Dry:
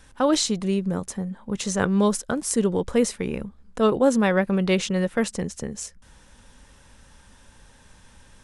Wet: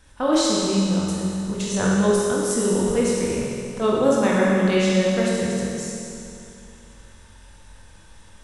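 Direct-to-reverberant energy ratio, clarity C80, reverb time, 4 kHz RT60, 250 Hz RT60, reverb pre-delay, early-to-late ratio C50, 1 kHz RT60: -5.5 dB, -0.5 dB, 2.7 s, 2.6 s, 2.7 s, 22 ms, -2.5 dB, 2.7 s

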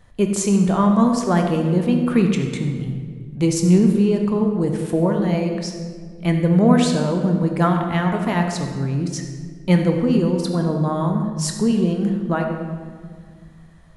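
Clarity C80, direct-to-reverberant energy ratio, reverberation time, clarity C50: 6.0 dB, 3.0 dB, 1.8 s, 4.5 dB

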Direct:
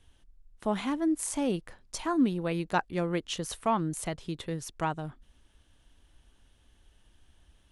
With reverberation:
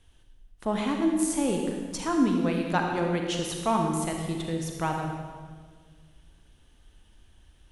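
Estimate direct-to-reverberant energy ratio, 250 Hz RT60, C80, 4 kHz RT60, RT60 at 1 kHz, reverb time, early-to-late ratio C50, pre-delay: 1.5 dB, 2.1 s, 4.0 dB, 1.4 s, 1.5 s, 1.7 s, 2.5 dB, 36 ms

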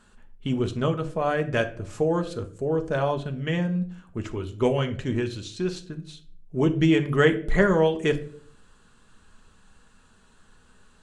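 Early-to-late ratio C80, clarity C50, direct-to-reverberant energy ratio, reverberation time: 19.0 dB, 14.5 dB, 5.5 dB, 0.55 s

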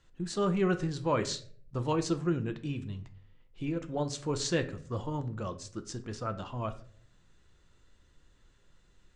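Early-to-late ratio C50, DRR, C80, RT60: 14.5 dB, 8.5 dB, 18.5 dB, 0.55 s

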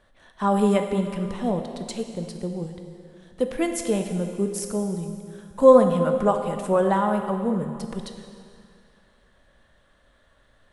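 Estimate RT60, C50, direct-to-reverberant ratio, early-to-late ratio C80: 2.3 s, 6.5 dB, 5.0 dB, 7.5 dB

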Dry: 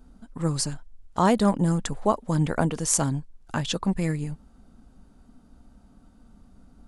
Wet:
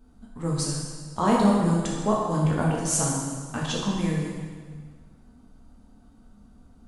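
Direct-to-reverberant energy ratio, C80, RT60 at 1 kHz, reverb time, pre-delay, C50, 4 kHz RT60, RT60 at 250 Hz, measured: -4.0 dB, 2.0 dB, 1.6 s, 1.6 s, 5 ms, 0.0 dB, 1.5 s, 1.6 s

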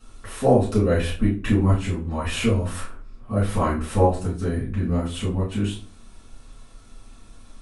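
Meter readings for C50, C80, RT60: 7.5 dB, 13.5 dB, 0.45 s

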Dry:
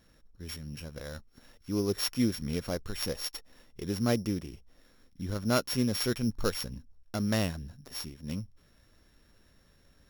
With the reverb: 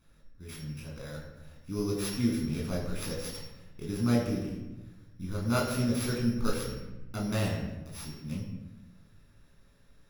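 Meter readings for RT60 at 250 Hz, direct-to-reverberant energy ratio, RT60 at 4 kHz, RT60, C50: 1.4 s, -3.5 dB, 0.70 s, 1.0 s, 3.5 dB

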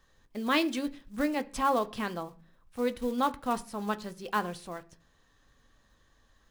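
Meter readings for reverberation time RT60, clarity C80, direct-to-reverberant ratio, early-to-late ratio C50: 0.45 s, 24.5 dB, 9.0 dB, 20.0 dB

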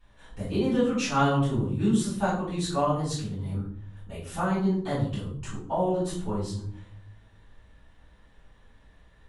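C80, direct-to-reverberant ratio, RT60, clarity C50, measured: 8.0 dB, -13.0 dB, 0.55 s, 3.5 dB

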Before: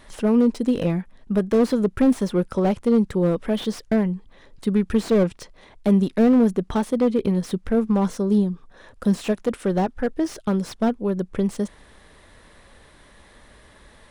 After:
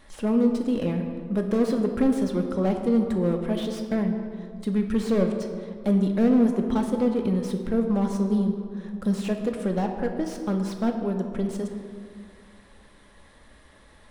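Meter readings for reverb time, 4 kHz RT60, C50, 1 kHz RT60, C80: 2.1 s, 1.2 s, 6.0 dB, 2.0 s, 7.0 dB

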